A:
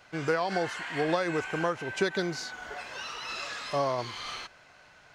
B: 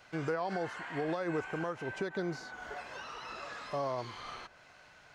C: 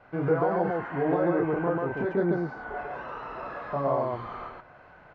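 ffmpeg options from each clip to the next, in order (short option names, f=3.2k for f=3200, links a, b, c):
-filter_complex "[0:a]acrossover=split=1600[a][b];[a]alimiter=limit=-23.5dB:level=0:latency=1:release=169[c];[b]acompressor=threshold=-49dB:ratio=6[d];[c][d]amix=inputs=2:normalize=0,volume=-2dB"
-af "lowpass=1.2k,aecho=1:1:29.15|139.9:0.794|1,volume=6dB"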